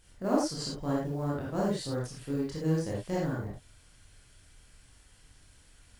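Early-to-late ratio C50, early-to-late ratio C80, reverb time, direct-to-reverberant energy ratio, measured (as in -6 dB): 0.0 dB, 6.0 dB, not exponential, -5.5 dB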